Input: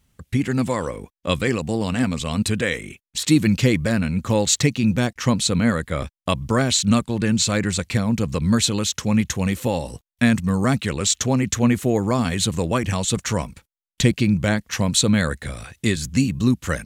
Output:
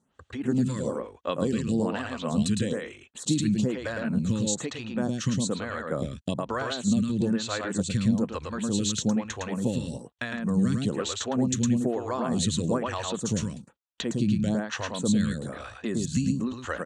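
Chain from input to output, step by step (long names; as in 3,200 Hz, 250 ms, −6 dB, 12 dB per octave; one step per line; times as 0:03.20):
downward compressor, threshold −21 dBFS, peak gain reduction 10 dB
loudspeaker in its box 100–8,100 Hz, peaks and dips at 220 Hz +3 dB, 2,200 Hz −10 dB, 5,100 Hz −7 dB
single-tap delay 109 ms −3.5 dB
phaser with staggered stages 1.1 Hz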